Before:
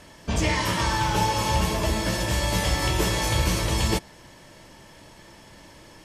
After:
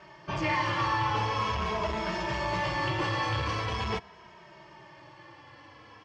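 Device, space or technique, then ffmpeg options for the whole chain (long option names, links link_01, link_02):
barber-pole flanger into a guitar amplifier: -filter_complex "[0:a]asplit=2[link_01][link_02];[link_02]adelay=2.8,afreqshift=-0.43[link_03];[link_01][link_03]amix=inputs=2:normalize=1,asoftclip=type=tanh:threshold=-22dB,highpass=110,equalizer=frequency=180:width_type=q:width=4:gain=-5,equalizer=frequency=250:width_type=q:width=4:gain=-10,equalizer=frequency=510:width_type=q:width=4:gain=-4,equalizer=frequency=1100:width_type=q:width=4:gain=7,equalizer=frequency=3800:width_type=q:width=4:gain=-8,lowpass=frequency=4400:width=0.5412,lowpass=frequency=4400:width=1.3066,volume=1.5dB"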